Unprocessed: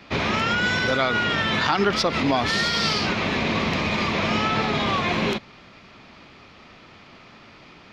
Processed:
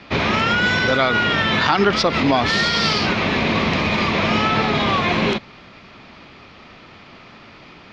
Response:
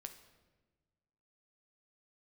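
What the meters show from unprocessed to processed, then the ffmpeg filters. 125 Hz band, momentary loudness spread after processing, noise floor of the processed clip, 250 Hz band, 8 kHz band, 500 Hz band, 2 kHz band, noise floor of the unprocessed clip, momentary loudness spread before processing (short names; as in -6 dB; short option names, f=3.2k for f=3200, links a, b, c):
+4.5 dB, 2 LU, -44 dBFS, +4.5 dB, +1.0 dB, +4.5 dB, +4.5 dB, -48 dBFS, 3 LU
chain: -af "lowpass=5.9k,volume=4.5dB"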